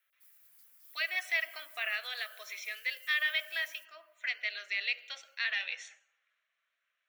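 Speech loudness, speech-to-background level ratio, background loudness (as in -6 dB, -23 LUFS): -34.0 LUFS, 19.5 dB, -53.5 LUFS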